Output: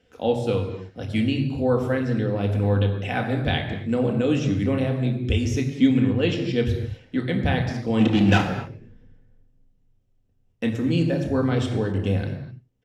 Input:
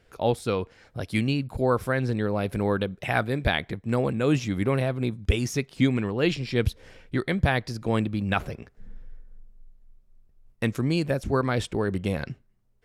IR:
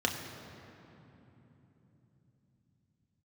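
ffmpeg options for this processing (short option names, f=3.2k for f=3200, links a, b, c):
-filter_complex "[0:a]asplit=3[a][b][c];[a]afade=t=out:st=7.99:d=0.02[d];[b]asplit=2[e][f];[f]highpass=f=720:p=1,volume=30dB,asoftclip=type=tanh:threshold=-10dB[g];[e][g]amix=inputs=2:normalize=0,lowpass=f=3k:p=1,volume=-6dB,afade=t=in:st=7.99:d=0.02,afade=t=out:st=8.4:d=0.02[h];[c]afade=t=in:st=8.4:d=0.02[i];[d][h][i]amix=inputs=3:normalize=0,equalizer=f=1.3k:w=0.99:g=-4.5,aecho=1:1:90:0.0841[j];[1:a]atrim=start_sample=2205,afade=t=out:st=0.32:d=0.01,atrim=end_sample=14553[k];[j][k]afir=irnorm=-1:irlink=0,volume=-7dB"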